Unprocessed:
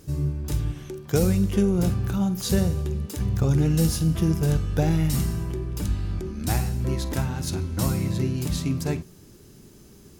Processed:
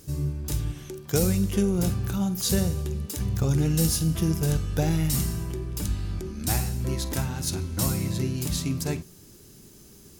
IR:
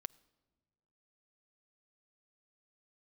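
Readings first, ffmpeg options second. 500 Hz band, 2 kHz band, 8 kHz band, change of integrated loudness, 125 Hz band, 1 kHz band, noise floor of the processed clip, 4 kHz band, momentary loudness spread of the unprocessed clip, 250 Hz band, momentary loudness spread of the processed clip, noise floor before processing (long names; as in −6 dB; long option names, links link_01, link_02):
−2.5 dB, −1.0 dB, +4.0 dB, −1.5 dB, −2.5 dB, −2.0 dB, −50 dBFS, +2.0 dB, 8 LU, −2.5 dB, 8 LU, −50 dBFS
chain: -af "highshelf=frequency=3700:gain=8,volume=-2.5dB"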